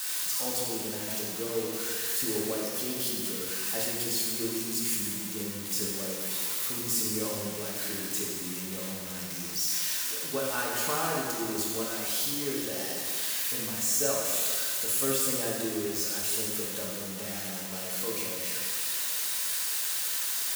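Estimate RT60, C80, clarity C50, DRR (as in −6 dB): 2.1 s, 1.5 dB, 0.0 dB, −4.0 dB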